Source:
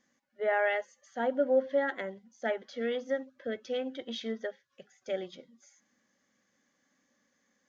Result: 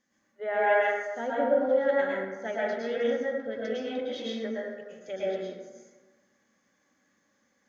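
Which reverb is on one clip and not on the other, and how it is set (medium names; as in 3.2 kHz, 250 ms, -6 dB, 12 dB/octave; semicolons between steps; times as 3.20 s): plate-style reverb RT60 1.3 s, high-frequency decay 0.4×, pre-delay 95 ms, DRR -7 dB; trim -3.5 dB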